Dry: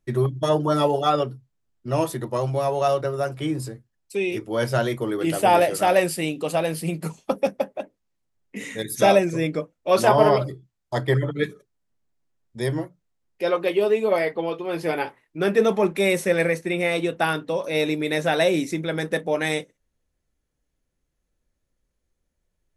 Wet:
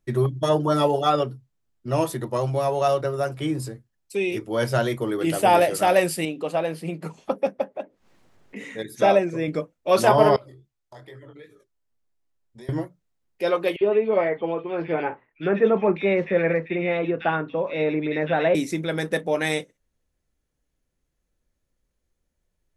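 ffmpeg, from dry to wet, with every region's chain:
-filter_complex "[0:a]asettb=1/sr,asplit=3[a][b][c];[a]atrim=end=6.254[d];[b]atrim=start=6.25:end=9.48,asetpts=PTS-STARTPTS,afade=t=in:d=0.004:c=qsin,afade=t=out:st=3.226:d=0.004:c=qsin,lowshelf=f=140:g=-11.5,acompressor=mode=upward:threshold=-33dB:ratio=2.5:attack=3.2:release=140:knee=2.83:detection=peak,lowpass=f=2k:p=1[e];[c]atrim=start=9.476[f];[d][e]acrossfade=d=0.004:c1=hsin:c2=qsin[g];[g][f]acrossfade=d=0.004:c1=qsin:c2=hsin,asettb=1/sr,asplit=3[h][i][j];[h]atrim=end=10.364[k];[i]atrim=start=10.36:end=12.69,asetpts=PTS-STARTPTS,afade=t=in:d=0.004:c=qsin,afade=t=out:st=2.326:d=0.004:c=qsin,equalizer=f=170:t=o:w=0.54:g=-11.5,acompressor=threshold=-38dB:ratio=8:attack=3.2:release=140:knee=1:detection=peak,flanger=delay=17:depth=6.5:speed=2.5[l];[j]atrim=start=12.686[m];[k][l]acrossfade=d=0.004:c1=hsin:c2=qsin[n];[n][m]acrossfade=d=0.004:c1=qsin:c2=hsin,asettb=1/sr,asplit=3[o][p][q];[o]atrim=end=13.764[r];[p]atrim=start=13.76:end=18.55,asetpts=PTS-STARTPTS,afade=t=in:d=0.004:c=qsin,afade=t=out:st=4.786:d=0.004:c=qsin,lowpass=f=2.8k:w=0.5412,lowpass=f=2.8k:w=1.3066,acrossover=split=2200[s][t];[s]adelay=50[u];[u][t]amix=inputs=2:normalize=0,atrim=end_sample=211239[v];[q]atrim=start=18.546[w];[r][v]acrossfade=d=0.004:c1=hsin:c2=qsin[x];[x][w]acrossfade=d=0.004:c1=qsin:c2=hsin"

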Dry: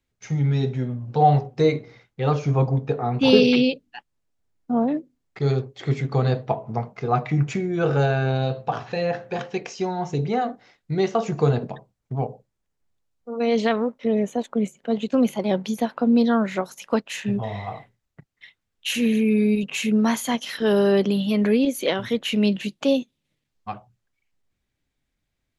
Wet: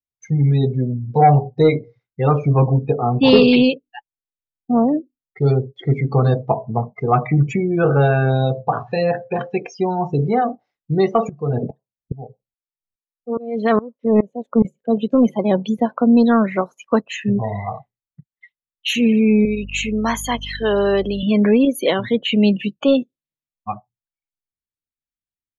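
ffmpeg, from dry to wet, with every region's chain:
-filter_complex "[0:a]asettb=1/sr,asplit=3[a][b][c];[a]atrim=end=11.294[d];[b]atrim=start=11.29:end=14.65,asetpts=PTS-STARTPTS,afade=t=in:d=0.004:c=qsin,afade=t=out:st=3.356:d=0.004:c=qsin,acontrast=53,aeval=exprs='val(0)*pow(10,-25*if(lt(mod(-2.4*n/s,1),2*abs(-2.4)/1000),1-mod(-2.4*n/s,1)/(2*abs(-2.4)/1000),(mod(-2.4*n/s,1)-2*abs(-2.4)/1000)/(1-2*abs(-2.4)/1000))/20)':c=same[e];[c]atrim=start=14.646[f];[d][e]acrossfade=d=0.004:c1=hsin:c2=qsin[g];[g][f]acrossfade=d=0.004:c1=qsin:c2=hsin,asettb=1/sr,asplit=3[h][i][j];[h]atrim=end=19.454[k];[i]atrim=start=19.45:end=21.23,asetpts=PTS-STARTPTS,afade=t=in:d=0.004:c=qsin,afade=t=out:st=1.776:d=0.004:c=qsin,highpass=f=530:p=1,aeval=exprs='val(0)+0.0126*(sin(2*PI*50*n/s)+sin(2*PI*2*50*n/s)/2+sin(2*PI*3*50*n/s)/3+sin(2*PI*4*50*n/s)/4+sin(2*PI*5*50*n/s)/5)':c=same[l];[j]atrim=start=21.226[m];[k][l]acrossfade=d=0.004:c1=hsin:c2=qsin[n];[n][m]acrossfade=d=0.004:c1=qsin:c2=hsin,adynamicequalizer=threshold=0.00631:dfrequency=1100:dqfactor=6.3:tfrequency=1100:tqfactor=6.3:attack=5:release=100:ratio=0.375:range=2:mode=boostabove:tftype=bell,acontrast=83,afftdn=nr=30:nf=-25,volume=-1dB"

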